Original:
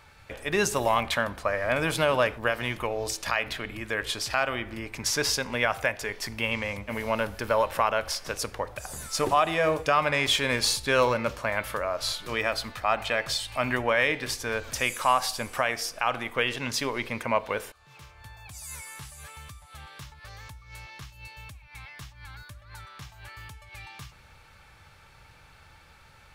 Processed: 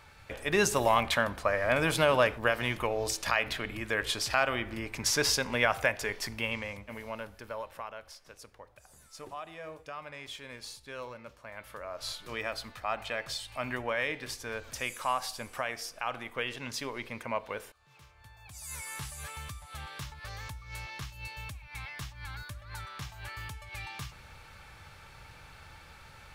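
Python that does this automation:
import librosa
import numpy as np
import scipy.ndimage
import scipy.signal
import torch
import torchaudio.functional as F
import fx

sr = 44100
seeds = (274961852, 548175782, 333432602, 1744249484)

y = fx.gain(x, sr, db=fx.line((6.13, -1.0), (7.12, -12.0), (8.18, -19.5), (11.38, -19.5), (12.09, -8.0), (18.34, -8.0), (18.95, 2.5)))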